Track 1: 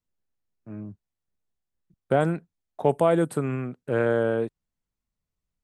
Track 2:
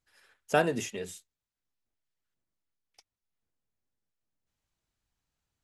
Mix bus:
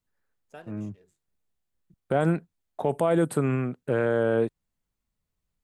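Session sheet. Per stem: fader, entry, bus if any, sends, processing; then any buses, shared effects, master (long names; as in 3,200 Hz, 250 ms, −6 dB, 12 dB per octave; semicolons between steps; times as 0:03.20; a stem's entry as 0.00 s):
+3.0 dB, 0.00 s, no send, no processing
−9.0 dB, 0.00 s, no send, adaptive Wiener filter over 15 samples; flanger 1.3 Hz, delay 1.7 ms, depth 9.1 ms, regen −76%; automatic ducking −10 dB, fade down 0.75 s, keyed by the first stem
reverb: not used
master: parametric band 5,500 Hz −2.5 dB 0.38 octaves; brickwall limiter −13.5 dBFS, peak gain reduction 8 dB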